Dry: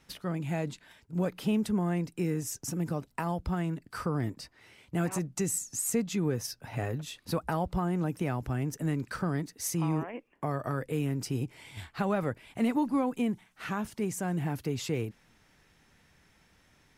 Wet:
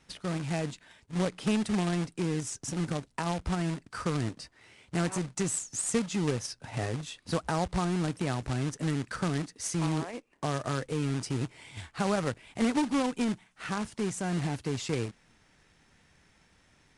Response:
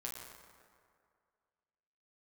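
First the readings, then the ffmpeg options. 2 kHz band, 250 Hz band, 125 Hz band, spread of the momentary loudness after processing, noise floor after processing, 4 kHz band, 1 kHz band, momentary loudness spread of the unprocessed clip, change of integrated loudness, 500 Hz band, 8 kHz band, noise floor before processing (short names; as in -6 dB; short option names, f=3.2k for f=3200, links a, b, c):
+2.5 dB, 0.0 dB, 0.0 dB, 7 LU, -65 dBFS, +4.5 dB, +1.0 dB, 7 LU, +0.5 dB, +0.5 dB, +1.0 dB, -65 dBFS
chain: -af "acrusher=bits=2:mode=log:mix=0:aa=0.000001,aresample=22050,aresample=44100"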